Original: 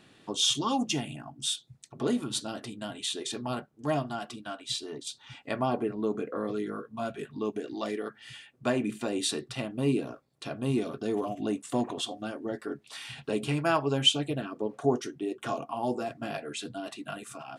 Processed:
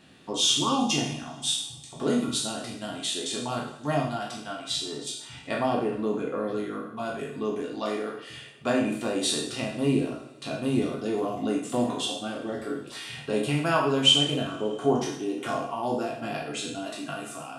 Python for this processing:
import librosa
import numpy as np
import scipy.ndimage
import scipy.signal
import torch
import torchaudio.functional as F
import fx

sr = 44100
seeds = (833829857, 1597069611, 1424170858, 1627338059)

y = fx.spec_trails(x, sr, decay_s=0.53)
y = fx.rev_double_slope(y, sr, seeds[0], early_s=0.56, late_s=3.1, knee_db=-21, drr_db=3.5)